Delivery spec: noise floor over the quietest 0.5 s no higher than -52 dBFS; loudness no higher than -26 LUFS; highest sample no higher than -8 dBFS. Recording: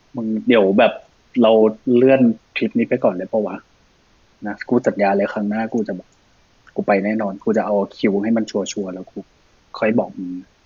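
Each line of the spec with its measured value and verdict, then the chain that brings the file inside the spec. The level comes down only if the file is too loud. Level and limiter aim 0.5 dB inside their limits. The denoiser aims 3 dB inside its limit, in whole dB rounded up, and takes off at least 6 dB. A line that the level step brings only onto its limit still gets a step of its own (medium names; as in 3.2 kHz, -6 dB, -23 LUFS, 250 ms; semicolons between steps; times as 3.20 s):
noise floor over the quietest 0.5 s -56 dBFS: pass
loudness -18.5 LUFS: fail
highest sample -3.0 dBFS: fail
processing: trim -8 dB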